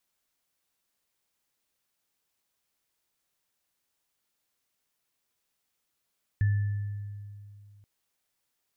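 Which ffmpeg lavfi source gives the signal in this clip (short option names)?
-f lavfi -i "aevalsrc='0.1*pow(10,-3*t/2.55)*sin(2*PI*102*t)+0.0126*pow(10,-3*t/1.33)*sin(2*PI*1750*t)':d=1.43:s=44100"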